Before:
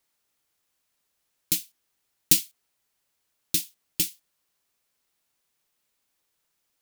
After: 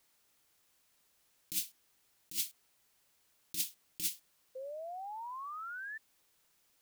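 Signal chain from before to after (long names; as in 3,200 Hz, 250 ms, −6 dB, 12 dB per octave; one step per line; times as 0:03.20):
compressor whose output falls as the input rises −33 dBFS, ratio −1
sound drawn into the spectrogram rise, 0:04.55–0:05.98, 510–1,800 Hz −39 dBFS
level −4 dB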